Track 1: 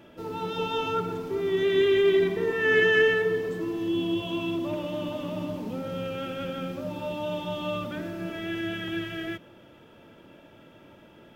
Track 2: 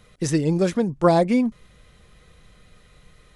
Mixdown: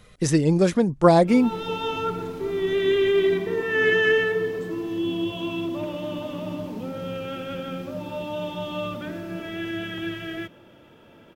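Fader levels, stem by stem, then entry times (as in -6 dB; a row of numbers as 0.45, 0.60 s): +1.0, +1.5 dB; 1.10, 0.00 s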